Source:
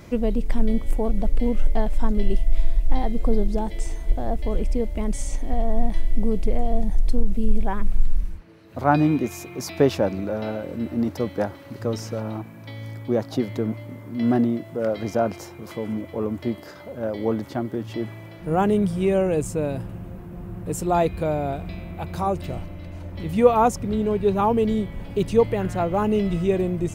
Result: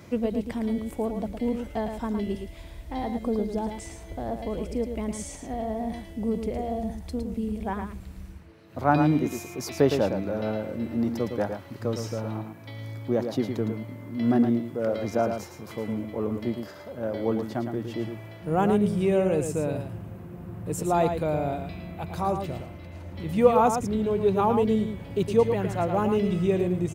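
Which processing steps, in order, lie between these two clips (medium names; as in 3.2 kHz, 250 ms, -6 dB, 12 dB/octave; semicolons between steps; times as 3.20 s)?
high-pass 65 Hz 24 dB/octave; delay 111 ms -7 dB; trim -3 dB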